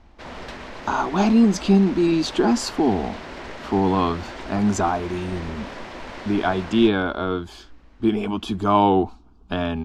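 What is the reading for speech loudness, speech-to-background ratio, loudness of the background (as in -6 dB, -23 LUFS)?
-21.5 LUFS, 15.0 dB, -36.5 LUFS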